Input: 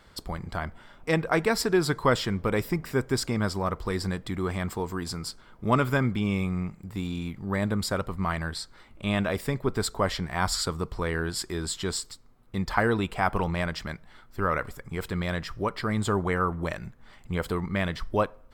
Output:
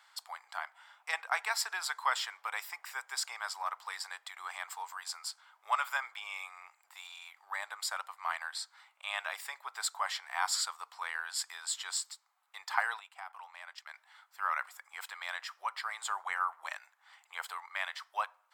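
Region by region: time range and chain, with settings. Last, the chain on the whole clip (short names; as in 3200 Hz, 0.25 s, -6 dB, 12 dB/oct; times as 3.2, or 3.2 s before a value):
12.99–13.94 gate -34 dBFS, range -14 dB + compressor 16:1, threshold -33 dBFS
whole clip: elliptic high-pass 800 Hz, stop band 70 dB; bell 7400 Hz +3.5 dB 0.33 oct; gain -3.5 dB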